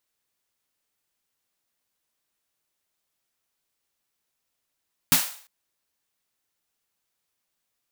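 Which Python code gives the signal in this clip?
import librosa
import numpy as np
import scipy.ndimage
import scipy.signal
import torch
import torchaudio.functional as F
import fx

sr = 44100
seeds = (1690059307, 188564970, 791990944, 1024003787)

y = fx.drum_snare(sr, seeds[0], length_s=0.35, hz=170.0, second_hz=260.0, noise_db=6.0, noise_from_hz=640.0, decay_s=0.15, noise_decay_s=0.48)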